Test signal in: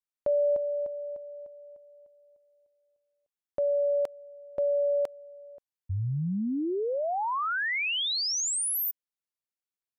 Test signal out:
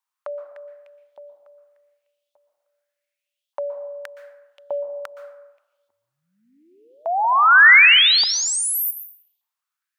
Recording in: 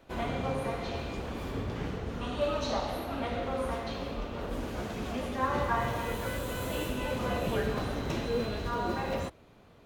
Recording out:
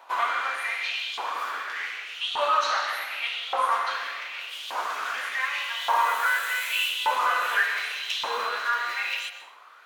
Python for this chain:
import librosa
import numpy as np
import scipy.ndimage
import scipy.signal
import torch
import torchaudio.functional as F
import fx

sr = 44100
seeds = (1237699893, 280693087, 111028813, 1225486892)

y = scipy.signal.sosfilt(scipy.signal.butter(4, 260.0, 'highpass', fs=sr, output='sos'), x)
y = fx.filter_lfo_highpass(y, sr, shape='saw_up', hz=0.85, low_hz=900.0, high_hz=3500.0, q=4.8)
y = fx.rev_plate(y, sr, seeds[0], rt60_s=1.1, hf_ratio=0.45, predelay_ms=110, drr_db=8.5)
y = y * 10.0 ** (6.5 / 20.0)